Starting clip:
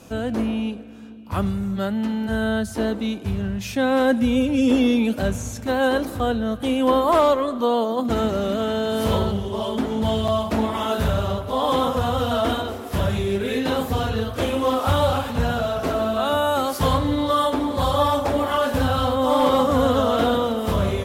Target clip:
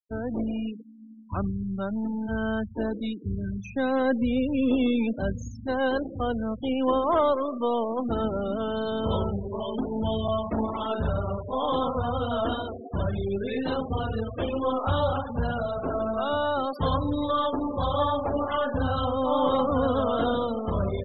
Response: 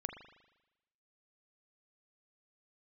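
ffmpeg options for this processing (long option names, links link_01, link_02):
-af "aeval=exprs='0.398*(cos(1*acos(clip(val(0)/0.398,-1,1)))-cos(1*PI/2))+0.0126*(cos(8*acos(clip(val(0)/0.398,-1,1)))-cos(8*PI/2))':channel_layout=same,afftfilt=real='re*gte(hypot(re,im),0.0631)':imag='im*gte(hypot(re,im),0.0631)':win_size=1024:overlap=0.75,volume=-5.5dB"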